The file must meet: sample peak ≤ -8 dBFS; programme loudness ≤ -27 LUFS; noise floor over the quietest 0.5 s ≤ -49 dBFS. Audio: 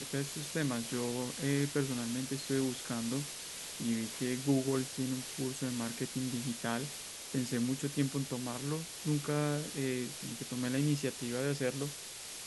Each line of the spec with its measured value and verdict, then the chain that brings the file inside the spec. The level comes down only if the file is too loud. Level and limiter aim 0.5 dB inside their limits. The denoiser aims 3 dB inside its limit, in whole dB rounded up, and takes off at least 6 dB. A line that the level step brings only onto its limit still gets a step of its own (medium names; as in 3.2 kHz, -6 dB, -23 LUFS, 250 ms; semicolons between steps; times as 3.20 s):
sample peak -18.0 dBFS: pass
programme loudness -35.5 LUFS: pass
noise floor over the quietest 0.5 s -46 dBFS: fail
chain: noise reduction 6 dB, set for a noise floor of -46 dBFS